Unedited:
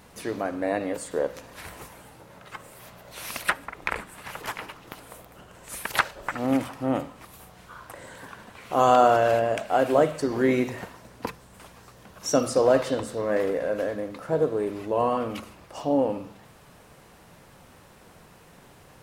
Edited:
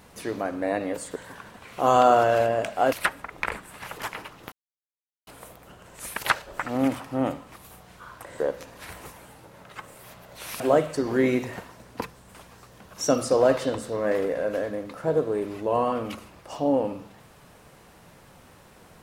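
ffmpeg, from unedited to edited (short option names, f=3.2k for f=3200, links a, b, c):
-filter_complex "[0:a]asplit=6[a][b][c][d][e][f];[a]atrim=end=1.162[g];[b]atrim=start=8.088:end=9.852[h];[c]atrim=start=3.358:end=4.96,asetpts=PTS-STARTPTS,afade=t=out:st=1.598:d=0.004:c=hsin,apad=pad_dur=0.75[i];[d]atrim=start=4.96:end=8.092,asetpts=PTS-STARTPTS,afade=t=in:d=0.004:c=hsin[j];[e]atrim=start=1.158:end=3.362[k];[f]atrim=start=9.848[l];[g][h]acrossfade=d=0.004:c1=hsin:c2=hsin[m];[i][j]concat=n=2:v=0:a=1[n];[m][n]acrossfade=d=0.004:c1=hsin:c2=hsin[o];[o][k]acrossfade=d=0.004:c1=hsin:c2=hsin[p];[p][l]acrossfade=d=0.004:c1=hsin:c2=hsin"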